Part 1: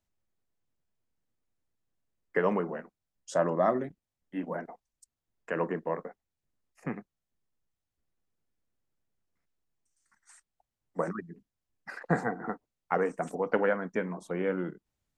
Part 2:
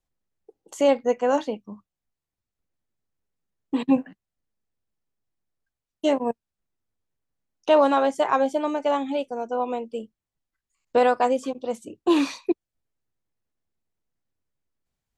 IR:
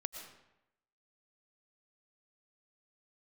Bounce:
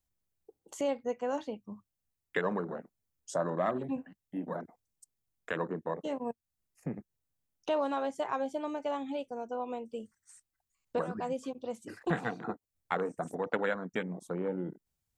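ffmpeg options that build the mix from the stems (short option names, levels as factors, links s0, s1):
-filter_complex "[0:a]afwtdn=0.0158,crystalizer=i=6:c=0,volume=1.06,asplit=2[s0][s1];[1:a]volume=0.501[s2];[s1]apad=whole_len=669183[s3];[s2][s3]sidechaincompress=threshold=0.0126:ratio=8:attack=6.4:release=210[s4];[s0][s4]amix=inputs=2:normalize=0,equalizer=f=91:t=o:w=1.5:g=7.5,acompressor=threshold=0.01:ratio=1.5"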